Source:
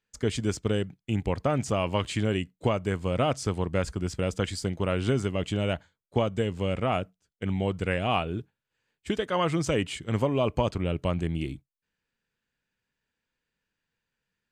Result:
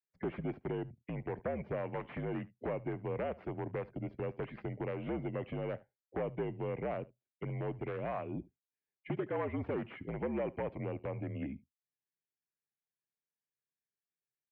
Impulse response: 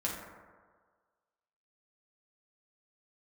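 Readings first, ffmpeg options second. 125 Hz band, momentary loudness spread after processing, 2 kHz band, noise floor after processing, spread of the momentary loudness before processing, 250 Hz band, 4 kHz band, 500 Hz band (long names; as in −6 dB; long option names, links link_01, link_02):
−12.0 dB, 6 LU, −12.0 dB, below −85 dBFS, 6 LU, −10.5 dB, below −25 dB, −9.0 dB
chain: -filter_complex "[0:a]acrossover=split=580|1400[link_01][link_02][link_03];[link_01]volume=26.5dB,asoftclip=hard,volume=-26.5dB[link_04];[link_03]aeval=exprs='0.119*(cos(1*acos(clip(val(0)/0.119,-1,1)))-cos(1*PI/2))+0.0237*(cos(4*acos(clip(val(0)/0.119,-1,1)))-cos(4*PI/2))+0.0422*(cos(7*acos(clip(val(0)/0.119,-1,1)))-cos(7*PI/2))':channel_layout=same[link_05];[link_04][link_02][link_05]amix=inputs=3:normalize=0,afftdn=noise_reduction=21:noise_floor=-48,acompressor=threshold=-38dB:ratio=2.5,aeval=exprs='0.0299*(abs(mod(val(0)/0.0299+3,4)-2)-1)':channel_layout=same,highpass=frequency=180:width_type=q:width=0.5412,highpass=frequency=180:width_type=q:width=1.307,lowpass=frequency=2300:width_type=q:width=0.5176,lowpass=frequency=2300:width_type=q:width=0.7071,lowpass=frequency=2300:width_type=q:width=1.932,afreqshift=-59,aecho=1:1:73:0.0841,volume=2.5dB"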